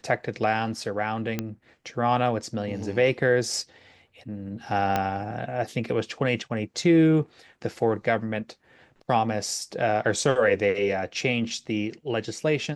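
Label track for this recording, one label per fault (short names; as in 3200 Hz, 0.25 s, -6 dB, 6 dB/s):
1.390000	1.390000	pop -13 dBFS
4.960000	4.960000	pop -10 dBFS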